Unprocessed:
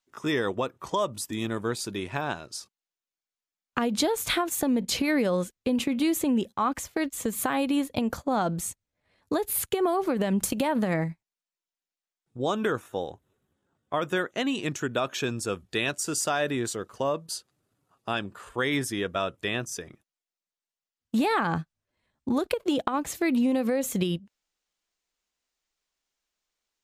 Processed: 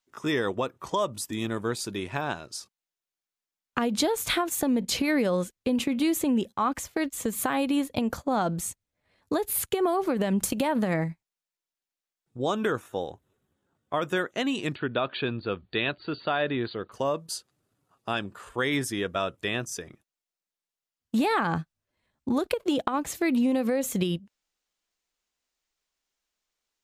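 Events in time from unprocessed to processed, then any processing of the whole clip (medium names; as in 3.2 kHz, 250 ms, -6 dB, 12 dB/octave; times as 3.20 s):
14.75–16.92 s: brick-wall FIR low-pass 4.7 kHz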